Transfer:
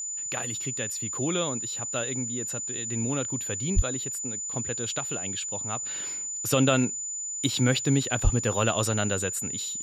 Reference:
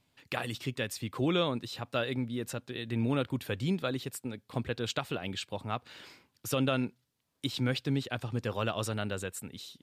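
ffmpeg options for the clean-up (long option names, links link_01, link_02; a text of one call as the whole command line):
ffmpeg -i in.wav -filter_complex "[0:a]bandreject=frequency=7000:width=30,asplit=3[link_01][link_02][link_03];[link_01]afade=type=out:start_time=3.75:duration=0.02[link_04];[link_02]highpass=frequency=140:width=0.5412,highpass=frequency=140:width=1.3066,afade=type=in:start_time=3.75:duration=0.02,afade=type=out:start_time=3.87:duration=0.02[link_05];[link_03]afade=type=in:start_time=3.87:duration=0.02[link_06];[link_04][link_05][link_06]amix=inputs=3:normalize=0,asplit=3[link_07][link_08][link_09];[link_07]afade=type=out:start_time=8.23:duration=0.02[link_10];[link_08]highpass=frequency=140:width=0.5412,highpass=frequency=140:width=1.3066,afade=type=in:start_time=8.23:duration=0.02,afade=type=out:start_time=8.35:duration=0.02[link_11];[link_09]afade=type=in:start_time=8.35:duration=0.02[link_12];[link_10][link_11][link_12]amix=inputs=3:normalize=0,asetnsamples=nb_out_samples=441:pad=0,asendcmd='5.83 volume volume -7dB',volume=0dB" out.wav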